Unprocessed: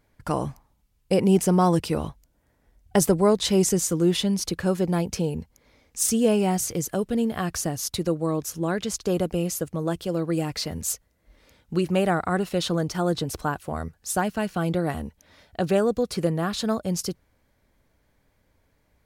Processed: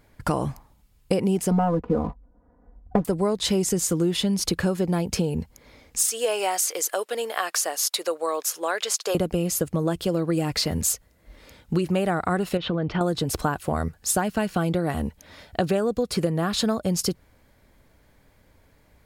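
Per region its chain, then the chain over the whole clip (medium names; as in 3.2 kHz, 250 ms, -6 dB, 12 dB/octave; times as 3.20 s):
1.51–3.05 s: low-pass 1.2 kHz 24 dB/octave + waveshaping leveller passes 1 + comb 4.1 ms, depth 93%
6.05–9.15 s: high-pass 530 Hz 24 dB/octave + peaking EQ 690 Hz -3 dB
12.57–13.01 s: Chebyshev low-pass 3 kHz, order 3 + compression 4:1, threshold -26 dBFS
whole clip: band-stop 5.9 kHz, Q 19; compression, threshold -28 dBFS; trim +8 dB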